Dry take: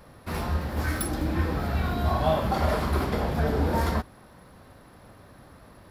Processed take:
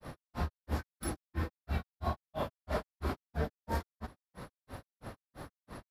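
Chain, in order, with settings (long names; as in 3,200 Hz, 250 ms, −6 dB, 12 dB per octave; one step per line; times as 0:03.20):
downward compressor 2.5 to 1, threshold −41 dBFS, peak gain reduction 15 dB
granular cloud 168 ms, grains 3 per second, pitch spread up and down by 0 semitones
level +7 dB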